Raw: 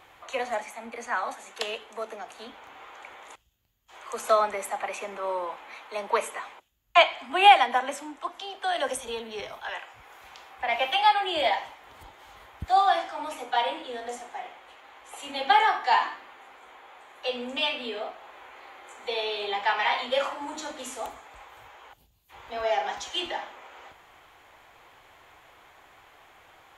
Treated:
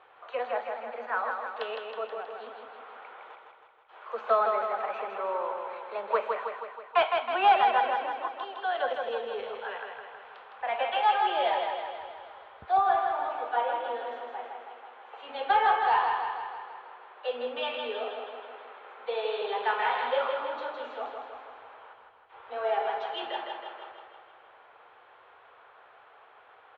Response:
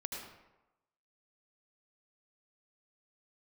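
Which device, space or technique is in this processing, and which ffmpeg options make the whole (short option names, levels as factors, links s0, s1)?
overdrive pedal into a guitar cabinet: -filter_complex "[0:a]asplit=2[s0][s1];[s1]highpass=f=720:p=1,volume=4.47,asoftclip=type=tanh:threshold=0.668[s2];[s0][s2]amix=inputs=2:normalize=0,lowpass=f=1100:p=1,volume=0.501,highpass=96,equalizer=f=100:t=q:w=4:g=-4,equalizer=f=170:t=q:w=4:g=-10,equalizer=f=300:t=q:w=4:g=-9,equalizer=f=450:t=q:w=4:g=6,equalizer=f=1400:t=q:w=4:g=4,equalizer=f=2100:t=q:w=4:g=-5,lowpass=f=3400:w=0.5412,lowpass=f=3400:w=1.3066,asettb=1/sr,asplit=3[s3][s4][s5];[s3]atrim=end=12.774[s6];[s4]atrim=start=12.77:end=13.8,asetpts=PTS-STARTPTS,afade=t=in:d=0.004:c=qsin,afade=t=out:st=1.026:d=0.004:c=qsin,acrossover=split=2700[s7][s8];[s8]acompressor=threshold=0.002:ratio=4:attack=1:release=60[s9];[s7][s9]amix=inputs=2:normalize=0[s10];[s5]atrim=start=13.796[s11];[s6][s10]acrossfade=d=0.004:c1=hsin:c2=qsin[s12];[s12][s11]acrossfade=d=0.004:c1=qsin:c2=hsin,equalizer=f=4200:w=2.7:g=4,aecho=1:1:160|320|480|640|800|960|1120|1280:0.596|0.351|0.207|0.122|0.0722|0.0426|0.0251|0.0148,volume=0.473"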